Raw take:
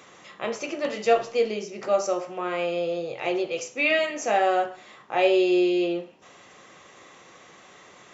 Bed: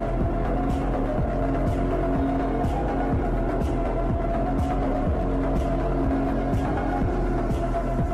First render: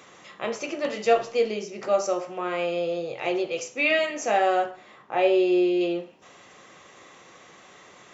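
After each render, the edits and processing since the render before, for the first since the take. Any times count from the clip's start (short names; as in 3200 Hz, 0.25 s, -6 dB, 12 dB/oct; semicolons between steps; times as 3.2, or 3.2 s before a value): 4.71–5.81 high shelf 3200 Hz -9 dB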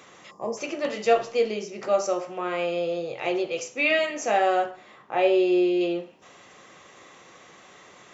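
0.31–0.58 spectral gain 1200–4600 Hz -27 dB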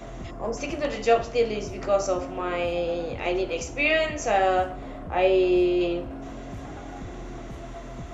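add bed -13.5 dB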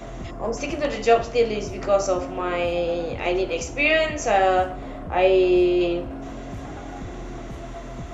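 gain +3 dB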